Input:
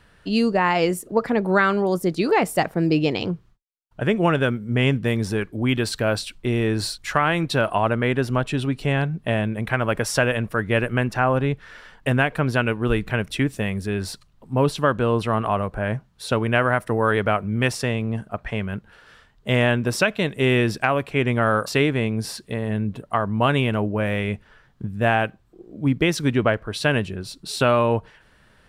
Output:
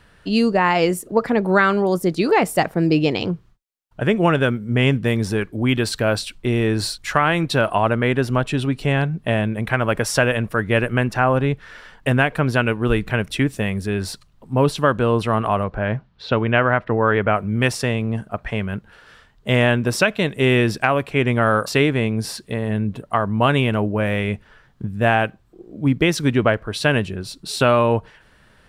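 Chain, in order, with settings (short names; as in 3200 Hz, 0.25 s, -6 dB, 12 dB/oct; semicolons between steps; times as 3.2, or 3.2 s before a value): 15.63–17.35 LPF 5500 Hz -> 2800 Hz 24 dB/oct; gain +2.5 dB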